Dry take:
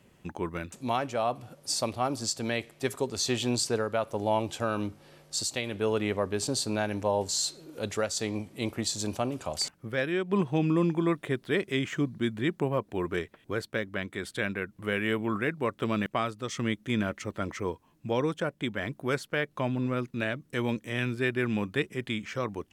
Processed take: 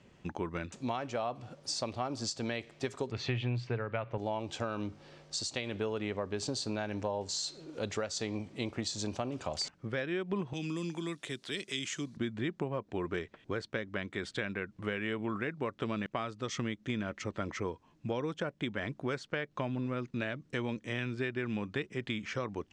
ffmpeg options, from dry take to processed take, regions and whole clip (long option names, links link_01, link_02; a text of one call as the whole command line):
ffmpeg -i in.wav -filter_complex "[0:a]asettb=1/sr,asplit=3[link_01][link_02][link_03];[link_01]atrim=end=3.114[link_04];[link_02]atrim=start=3.11:end=4.18,asetpts=PTS-STARTPTS,afade=type=in:duration=0.004:curve=qsin,afade=type=out:start_time=1.066:duration=0.004:curve=qsin,lowpass=frequency=2300:width_type=q:width=2.5,equalizer=frequency=120:width=4:gain=15[link_05];[link_03]atrim=start=4.176[link_06];[link_04][link_05]acrossfade=duration=0.004:curve1=hsin:curve2=qsin[link_07];[link_07][link_06]acrossfade=duration=0.004:curve1=qsin:curve2=hsin,asettb=1/sr,asplit=3[link_08][link_09][link_10];[link_08]atrim=end=10.534[link_11];[link_09]atrim=start=10.53:end=12.17,asetpts=PTS-STARTPTS,afade=type=in:duration=0.004:curve=qsin,afade=type=out:start_time=1.636:duration=0.004:curve=qsin,aemphasis=mode=production:type=riaa,acrossover=split=290|3000[link_12][link_13][link_14];[link_13]acompressor=threshold=-44dB:ratio=5:attack=3.2:release=140:knee=2.83:detection=peak[link_15];[link_12][link_15][link_14]amix=inputs=3:normalize=0[link_16];[link_10]atrim=start=12.166[link_17];[link_11][link_16]acrossfade=duration=0.004:curve1=hsin:curve2=qsin[link_18];[link_18][link_17]acrossfade=duration=0.004:curve1=qsin:curve2=hsin,acompressor=threshold=-31dB:ratio=6,lowpass=frequency=6900:width=0.5412,lowpass=frequency=6900:width=1.3066" out.wav